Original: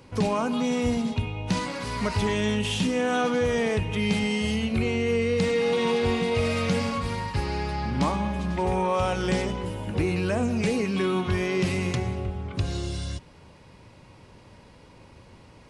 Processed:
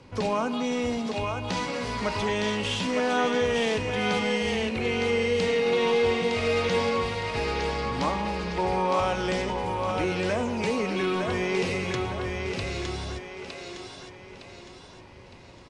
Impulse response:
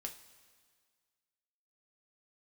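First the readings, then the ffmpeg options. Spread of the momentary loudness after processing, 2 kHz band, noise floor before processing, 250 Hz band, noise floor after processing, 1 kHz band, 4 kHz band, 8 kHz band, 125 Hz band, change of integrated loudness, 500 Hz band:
14 LU, +2.0 dB, −51 dBFS, −3.5 dB, −47 dBFS, +2.0 dB, +1.5 dB, −1.0 dB, −6.0 dB, −0.5 dB, +1.0 dB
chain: -filter_complex "[0:a]lowpass=7000,acrossover=split=310[link_01][link_02];[link_01]asoftclip=type=tanh:threshold=-32dB[link_03];[link_02]aecho=1:1:911|1822|2733|3644|4555:0.631|0.265|0.111|0.0467|0.0196[link_04];[link_03][link_04]amix=inputs=2:normalize=0"

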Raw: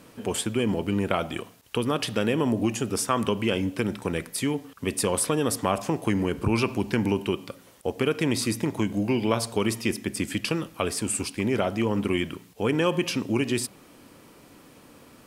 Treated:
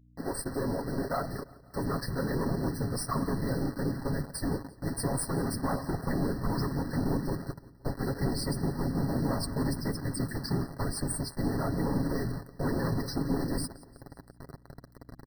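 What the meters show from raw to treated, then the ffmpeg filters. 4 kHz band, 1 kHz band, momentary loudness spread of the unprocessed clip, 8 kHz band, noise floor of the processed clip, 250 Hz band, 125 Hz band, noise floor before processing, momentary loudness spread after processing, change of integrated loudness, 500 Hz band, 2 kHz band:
−10.0 dB, −5.5 dB, 6 LU, −8.0 dB, −57 dBFS, −5.5 dB, −1.0 dB, −53 dBFS, 9 LU, −5.5 dB, −8.0 dB, −9.5 dB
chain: -filter_complex "[0:a]acrossover=split=200|5600[link_01][link_02][link_03];[link_01]acompressor=threshold=-41dB:ratio=16[link_04];[link_04][link_02][link_03]amix=inputs=3:normalize=0,asubboost=boost=9.5:cutoff=140,acontrast=84,afftdn=noise_reduction=18:noise_floor=-29,aeval=exprs='(tanh(11.2*val(0)+0.6)-tanh(0.6))/11.2':channel_layout=same,afftfilt=real='hypot(re,im)*cos(2*PI*random(0))':imag='hypot(re,im)*sin(2*PI*random(1))':win_size=512:overlap=0.75,acrusher=bits=6:mix=0:aa=0.000001,aecho=1:1:174|348|522|696:0.0891|0.0508|0.029|0.0165,aeval=exprs='val(0)+0.00141*(sin(2*PI*60*n/s)+sin(2*PI*2*60*n/s)/2+sin(2*PI*3*60*n/s)/3+sin(2*PI*4*60*n/s)/4+sin(2*PI*5*60*n/s)/5)':channel_layout=same,equalizer=frequency=6700:width_type=o:width=0.27:gain=-12.5,aecho=1:1:7.3:0.36,afftfilt=real='re*eq(mod(floor(b*sr/1024/2000),2),0)':imag='im*eq(mod(floor(b*sr/1024/2000),2),0)':win_size=1024:overlap=0.75"

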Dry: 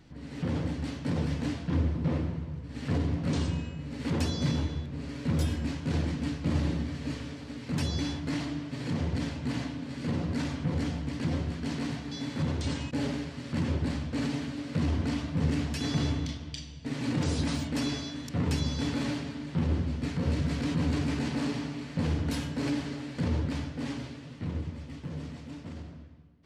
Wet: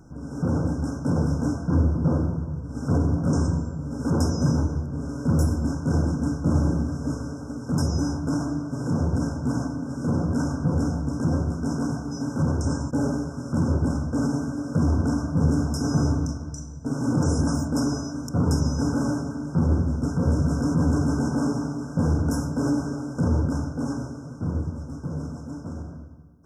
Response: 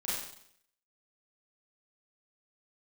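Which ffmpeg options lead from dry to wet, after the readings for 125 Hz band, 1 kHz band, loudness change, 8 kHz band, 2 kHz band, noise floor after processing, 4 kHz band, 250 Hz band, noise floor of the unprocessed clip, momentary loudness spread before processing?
+7.0 dB, +7.0 dB, +6.5 dB, +7.0 dB, 0.0 dB, −37 dBFS, −4.0 dB, +7.0 dB, −44 dBFS, 9 LU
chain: -af "afftfilt=real='re*(1-between(b*sr/4096,1600,5100))':imag='im*(1-between(b*sr/4096,1600,5100))':win_size=4096:overlap=0.75,acontrast=82"

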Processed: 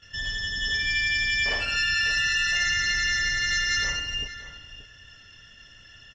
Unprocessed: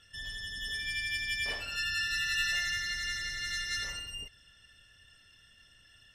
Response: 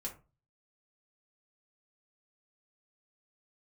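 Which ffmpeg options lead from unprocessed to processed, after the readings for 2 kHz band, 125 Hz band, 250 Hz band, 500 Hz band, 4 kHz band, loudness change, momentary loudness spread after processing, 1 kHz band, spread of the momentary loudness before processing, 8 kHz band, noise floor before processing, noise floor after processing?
+9.5 dB, +10.0 dB, +10.5 dB, +10.0 dB, +8.5 dB, +9.0 dB, 9 LU, +9.5 dB, 10 LU, +8.5 dB, −61 dBFS, −51 dBFS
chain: -filter_complex "[0:a]asplit=2[link_01][link_02];[link_02]acrusher=bits=3:mode=log:mix=0:aa=0.000001,volume=-4dB[link_03];[link_01][link_03]amix=inputs=2:normalize=0,bandreject=frequency=3800:width=5.9,asplit=2[link_04][link_05];[link_05]adelay=577.3,volume=-12dB,highshelf=frequency=4000:gain=-13[link_06];[link_04][link_06]amix=inputs=2:normalize=0,agate=range=-10dB:threshold=-60dB:ratio=16:detection=peak,alimiter=limit=-22.5dB:level=0:latency=1:release=25,volume=6.5dB" -ar 16000 -c:a pcm_mulaw

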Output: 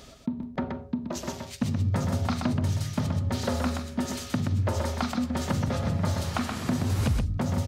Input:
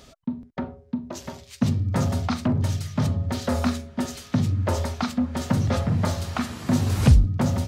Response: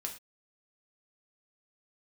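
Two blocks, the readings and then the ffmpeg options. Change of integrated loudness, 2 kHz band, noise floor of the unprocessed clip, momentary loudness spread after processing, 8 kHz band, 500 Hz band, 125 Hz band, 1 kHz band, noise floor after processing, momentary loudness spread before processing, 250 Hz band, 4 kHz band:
−4.0 dB, −1.5 dB, −51 dBFS, 7 LU, −1.5 dB, −2.5 dB, −4.5 dB, −2.0 dB, −44 dBFS, 14 LU, −3.5 dB, −1.5 dB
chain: -filter_complex "[0:a]acompressor=threshold=-26dB:ratio=6,asplit=2[link_01][link_02];[link_02]aecho=0:1:126:0.562[link_03];[link_01][link_03]amix=inputs=2:normalize=0,volume=1.5dB"

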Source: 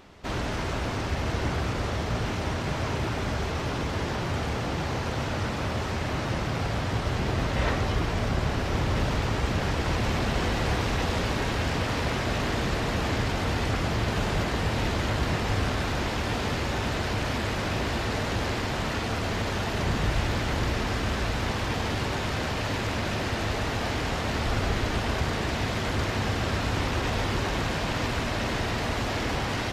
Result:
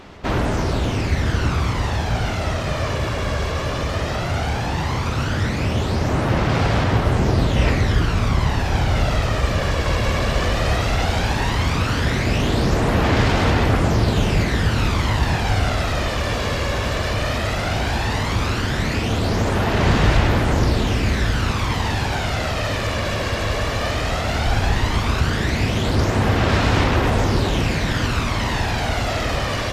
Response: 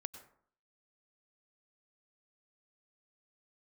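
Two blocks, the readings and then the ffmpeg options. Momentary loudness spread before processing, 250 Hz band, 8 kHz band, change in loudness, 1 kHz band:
3 LU, +7.5 dB, +6.5 dB, +7.5 dB, +6.5 dB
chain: -af "aphaser=in_gain=1:out_gain=1:delay=1.8:decay=0.43:speed=0.15:type=sinusoidal,volume=5.5dB"

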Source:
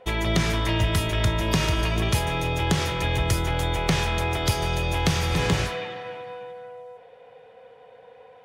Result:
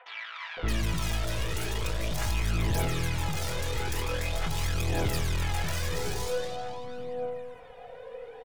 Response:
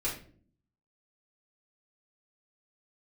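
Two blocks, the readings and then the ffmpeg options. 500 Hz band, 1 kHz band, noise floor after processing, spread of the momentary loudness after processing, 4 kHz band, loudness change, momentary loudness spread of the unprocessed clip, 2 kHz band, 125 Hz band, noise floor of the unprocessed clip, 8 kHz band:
−5.5 dB, −8.0 dB, −46 dBFS, 10 LU, −8.0 dB, −7.5 dB, 14 LU, −7.0 dB, −6.5 dB, −50 dBFS, −4.0 dB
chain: -filter_complex "[0:a]aeval=exprs='(tanh(70.8*val(0)+0.45)-tanh(0.45))/70.8':channel_layout=same,aphaser=in_gain=1:out_gain=1:delay=2.5:decay=0.58:speed=0.45:type=triangular,acrossover=split=980|3300[link_01][link_02][link_03];[link_01]adelay=570[link_04];[link_03]adelay=620[link_05];[link_04][link_02][link_05]amix=inputs=3:normalize=0,volume=5.5dB"

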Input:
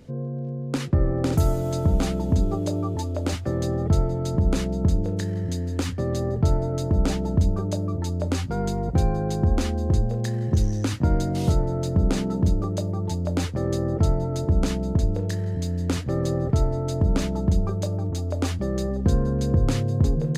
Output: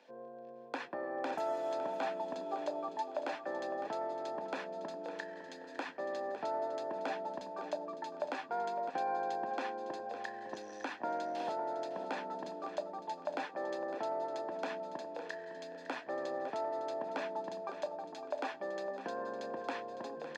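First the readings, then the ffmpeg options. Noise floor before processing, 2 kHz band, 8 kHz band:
−30 dBFS, −3.5 dB, −21.5 dB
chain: -filter_complex "[0:a]highpass=frequency=260:width=0.5412,highpass=frequency=260:width=1.3066,acrossover=split=420 4900:gain=0.0891 1 0.0794[link_01][link_02][link_03];[link_01][link_02][link_03]amix=inputs=3:normalize=0,aecho=1:1:1.2:0.53,acrossover=split=2200[link_04][link_05];[link_05]acompressor=threshold=-52dB:ratio=5[link_06];[link_04][link_06]amix=inputs=2:normalize=0,aecho=1:1:557|1114|1671:0.251|0.0728|0.0211,volume=-3.5dB"

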